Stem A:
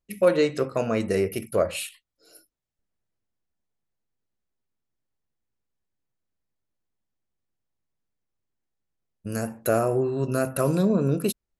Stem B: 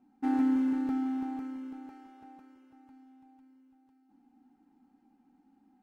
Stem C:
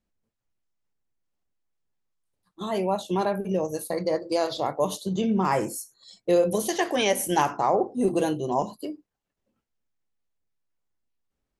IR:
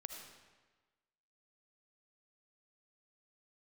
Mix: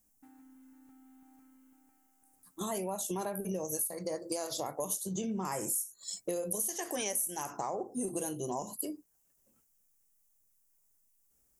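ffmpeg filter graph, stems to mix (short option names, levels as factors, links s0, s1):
-filter_complex "[1:a]volume=0.141[s0];[2:a]acompressor=threshold=0.00708:ratio=1.5,aexciter=amount=6.3:drive=7.8:freq=5900,volume=1.19[s1];[s0]equalizer=f=430:w=0.84:g=-8.5,acompressor=threshold=0.00141:ratio=6,volume=1[s2];[s1][s2]amix=inputs=2:normalize=0,acompressor=threshold=0.0251:ratio=6"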